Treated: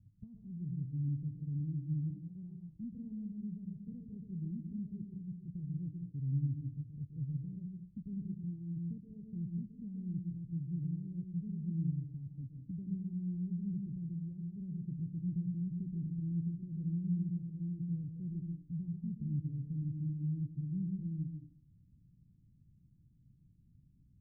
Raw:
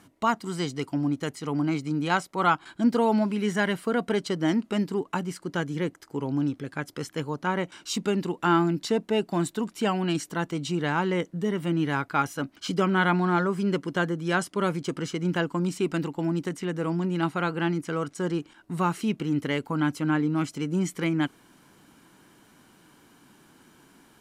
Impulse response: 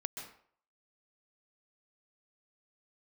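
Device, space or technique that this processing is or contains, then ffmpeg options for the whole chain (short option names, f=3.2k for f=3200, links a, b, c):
club heard from the street: -filter_complex "[0:a]alimiter=limit=-18.5dB:level=0:latency=1:release=376,lowpass=f=120:w=0.5412,lowpass=f=120:w=1.3066[a];[1:a]atrim=start_sample=2205[b];[a][b]afir=irnorm=-1:irlink=0,volume=7.5dB"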